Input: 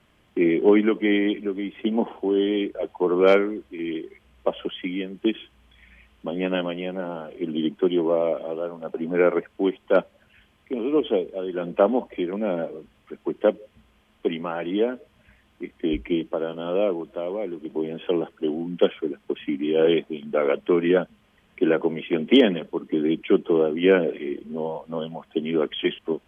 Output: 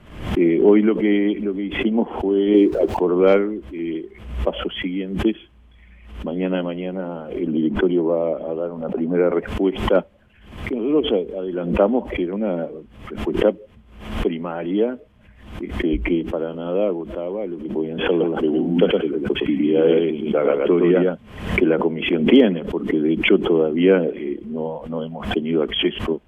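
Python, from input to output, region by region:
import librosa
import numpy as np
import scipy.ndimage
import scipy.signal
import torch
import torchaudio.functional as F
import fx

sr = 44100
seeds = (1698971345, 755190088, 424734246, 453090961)

y = fx.chain(x, sr, fx.zero_step(step_db=-41.5),
    fx.peak_eq(hz=350.0, db=9.5, octaves=1.2), at=(2.54, 2.97))
y = fx.chain(y, sr, fx.high_shelf(hz=2900.0, db=-11.5),
    fx.band_squash(depth_pct=40), at=(7.47, 9.32))
y = fx.chain(y, sr, fx.echo_single(ms=112, db=-3.0),
    fx.band_squash(depth_pct=40), at=(17.98, 21.63))
y = fx.tilt_eq(y, sr, slope=-2.0)
y = fx.pre_swell(y, sr, db_per_s=85.0)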